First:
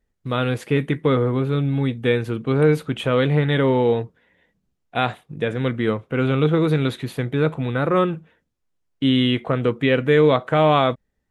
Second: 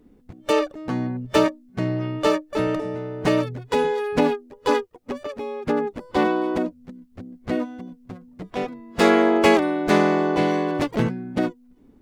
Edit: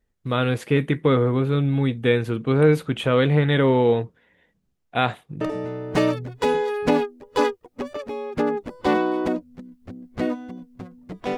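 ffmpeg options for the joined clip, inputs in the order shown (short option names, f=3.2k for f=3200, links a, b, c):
-filter_complex "[0:a]apad=whole_dur=11.37,atrim=end=11.37,atrim=end=5.412[a];[1:a]atrim=start=2.708:end=8.67[b];[a][b]acrossfade=d=0.004:c1=hsin:c2=hsin"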